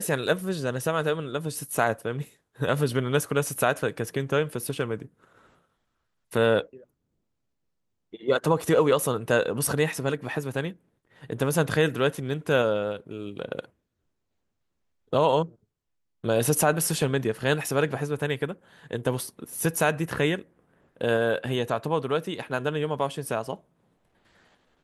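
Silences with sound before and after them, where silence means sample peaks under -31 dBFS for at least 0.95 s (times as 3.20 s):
5.02–6.33 s
6.61–8.14 s
13.60–15.13 s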